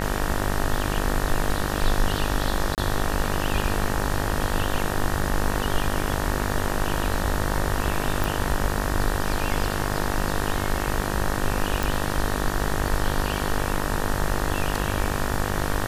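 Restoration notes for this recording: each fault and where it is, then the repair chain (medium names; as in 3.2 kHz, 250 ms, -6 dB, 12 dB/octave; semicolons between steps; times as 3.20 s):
buzz 50 Hz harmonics 38 -28 dBFS
2.75–2.78 s: dropout 28 ms
8.24 s: pop
11.83 s: pop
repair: de-click; de-hum 50 Hz, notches 38; interpolate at 2.75 s, 28 ms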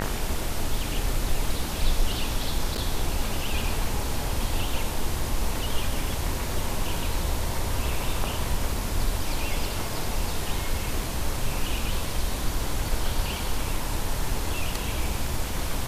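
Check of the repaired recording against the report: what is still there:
nothing left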